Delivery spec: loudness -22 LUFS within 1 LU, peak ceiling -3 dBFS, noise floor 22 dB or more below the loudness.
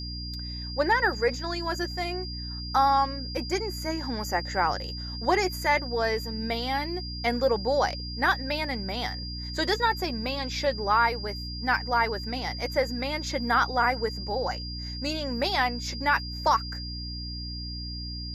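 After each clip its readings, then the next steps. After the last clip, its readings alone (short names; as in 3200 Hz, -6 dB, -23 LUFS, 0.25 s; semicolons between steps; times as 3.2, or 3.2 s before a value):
hum 60 Hz; harmonics up to 300 Hz; hum level -34 dBFS; steady tone 4800 Hz; tone level -37 dBFS; loudness -27.5 LUFS; peak -11.0 dBFS; loudness target -22.0 LUFS
-> notches 60/120/180/240/300 Hz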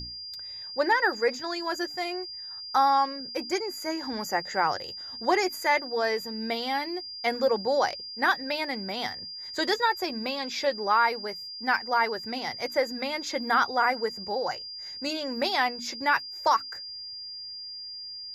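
hum none; steady tone 4800 Hz; tone level -37 dBFS
-> notch 4800 Hz, Q 30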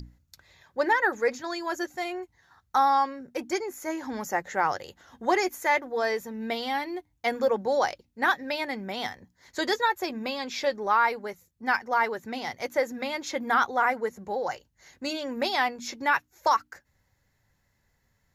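steady tone none; loudness -28.0 LUFS; peak -12.0 dBFS; loudness target -22.0 LUFS
-> gain +6 dB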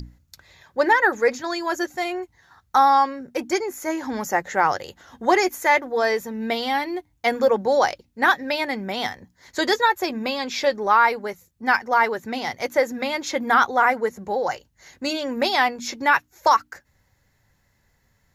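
loudness -22.0 LUFS; peak -6.0 dBFS; noise floor -66 dBFS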